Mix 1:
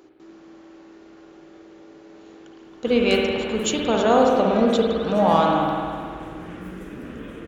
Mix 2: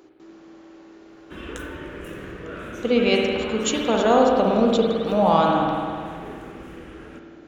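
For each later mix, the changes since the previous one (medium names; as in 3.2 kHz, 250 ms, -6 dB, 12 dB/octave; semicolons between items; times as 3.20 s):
background: entry -1.55 s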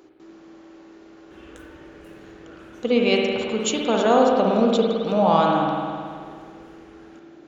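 background -11.5 dB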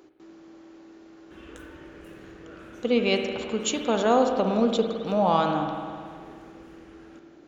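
speech: send -7.5 dB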